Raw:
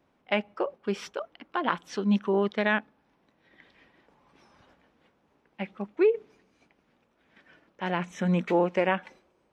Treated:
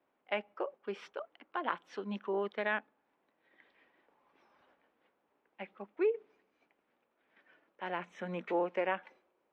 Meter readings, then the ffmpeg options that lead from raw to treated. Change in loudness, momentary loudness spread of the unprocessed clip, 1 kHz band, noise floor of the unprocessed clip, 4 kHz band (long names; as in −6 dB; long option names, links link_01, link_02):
−9.0 dB, 12 LU, −7.0 dB, −70 dBFS, −10.5 dB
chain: -filter_complex "[0:a]acrossover=split=280 3500:gain=0.158 1 0.2[link_01][link_02][link_03];[link_01][link_02][link_03]amix=inputs=3:normalize=0,volume=-7dB"